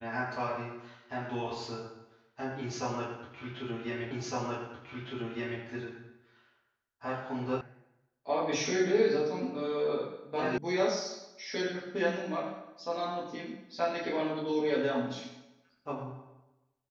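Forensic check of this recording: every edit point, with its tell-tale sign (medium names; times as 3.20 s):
4.11 s: repeat of the last 1.51 s
7.61 s: sound stops dead
10.58 s: sound stops dead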